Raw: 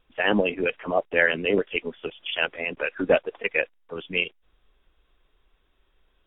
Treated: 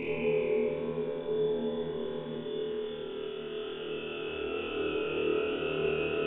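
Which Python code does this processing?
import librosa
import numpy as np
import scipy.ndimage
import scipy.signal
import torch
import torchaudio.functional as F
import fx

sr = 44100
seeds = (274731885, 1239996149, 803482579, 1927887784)

y = fx.paulstretch(x, sr, seeds[0], factor=30.0, window_s=0.25, from_s=1.86)
y = fx.room_flutter(y, sr, wall_m=4.4, rt60_s=1.3)
y = y * 10.0 ** (-4.0 / 20.0)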